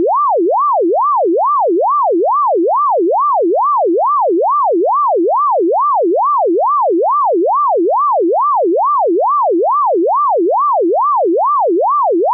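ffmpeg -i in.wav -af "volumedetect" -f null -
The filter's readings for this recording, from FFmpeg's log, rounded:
mean_volume: -12.2 dB
max_volume: -9.1 dB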